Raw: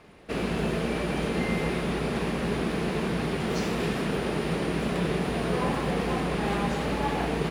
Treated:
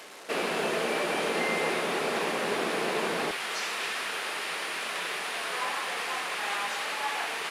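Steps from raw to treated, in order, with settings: one-bit delta coder 64 kbps, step -42.5 dBFS; high-pass 490 Hz 12 dB/octave, from 3.31 s 1.2 kHz; trim +4.5 dB

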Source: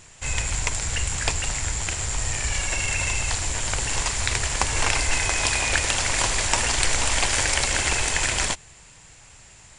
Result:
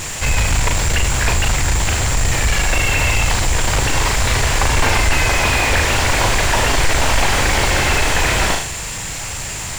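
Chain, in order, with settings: flutter echo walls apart 6.7 m, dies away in 0.29 s; power-law waveshaper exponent 0.5; slew-rate limiter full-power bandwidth 480 Hz

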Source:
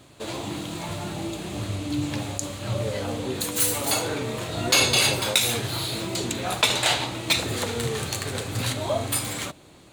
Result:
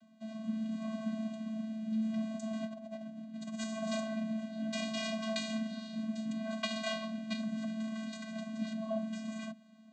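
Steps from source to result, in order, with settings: vocoder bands 16, square 220 Hz; 2.53–3.64 s: compressor with a negative ratio -31 dBFS, ratio -0.5; rotary cabinet horn 0.7 Hz; trim -7.5 dB

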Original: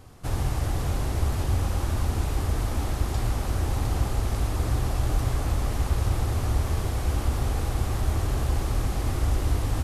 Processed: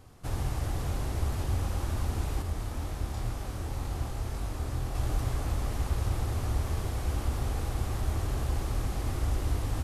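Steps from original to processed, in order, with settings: 2.42–4.95 s: chorus 2 Hz, depth 5.7 ms; trim -5 dB

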